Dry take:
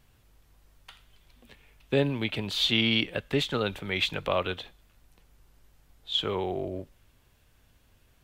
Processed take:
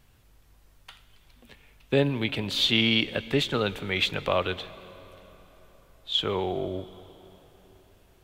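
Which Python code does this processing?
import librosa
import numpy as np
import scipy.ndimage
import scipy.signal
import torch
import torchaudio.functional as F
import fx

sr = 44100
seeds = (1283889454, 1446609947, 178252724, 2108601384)

y = fx.rev_plate(x, sr, seeds[0], rt60_s=4.4, hf_ratio=0.7, predelay_ms=105, drr_db=17.0)
y = y * librosa.db_to_amplitude(2.0)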